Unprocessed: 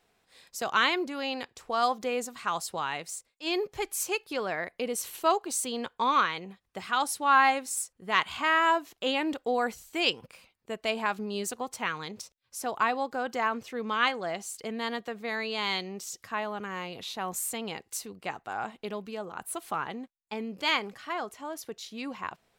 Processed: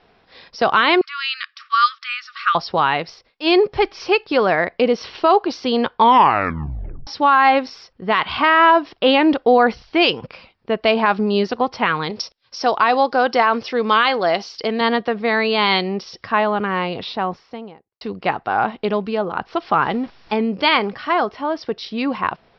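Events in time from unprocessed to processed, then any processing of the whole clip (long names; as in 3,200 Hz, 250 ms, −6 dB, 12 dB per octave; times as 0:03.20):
0:01.01–0:02.55: linear-phase brick-wall high-pass 1,100 Hz
0:05.99: tape stop 1.08 s
0:12.10–0:14.81: bass and treble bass −7 dB, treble +12 dB
0:16.81–0:18.01: fade out and dull
0:19.82–0:20.35: converter with a step at zero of −49 dBFS
whole clip: Chebyshev low-pass filter 5,500 Hz, order 8; high-shelf EQ 2,100 Hz −6.5 dB; boost into a limiter +20.5 dB; level −3.5 dB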